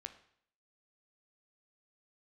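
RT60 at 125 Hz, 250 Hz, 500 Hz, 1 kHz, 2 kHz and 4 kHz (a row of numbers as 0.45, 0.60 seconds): 0.65, 0.65, 0.65, 0.65, 0.65, 0.60 seconds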